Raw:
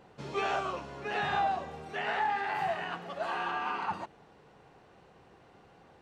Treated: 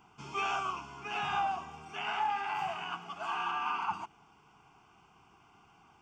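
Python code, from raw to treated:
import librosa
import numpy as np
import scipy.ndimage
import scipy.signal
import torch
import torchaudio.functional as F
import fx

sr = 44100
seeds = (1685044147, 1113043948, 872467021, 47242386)

y = fx.low_shelf(x, sr, hz=400.0, db=-8.5)
y = fx.fixed_phaser(y, sr, hz=2700.0, stages=8)
y = F.gain(torch.from_numpy(y), 3.0).numpy()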